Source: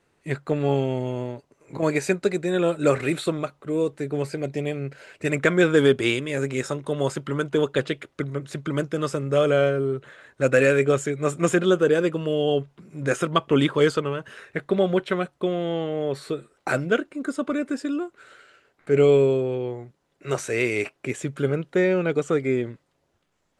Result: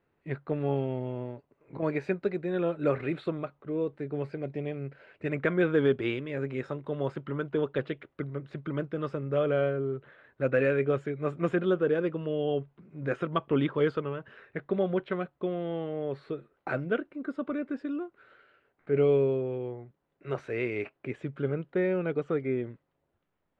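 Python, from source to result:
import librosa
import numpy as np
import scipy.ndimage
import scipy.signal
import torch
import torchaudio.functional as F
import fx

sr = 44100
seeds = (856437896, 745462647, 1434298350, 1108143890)

y = fx.air_absorb(x, sr, metres=370.0)
y = F.gain(torch.from_numpy(y), -6.0).numpy()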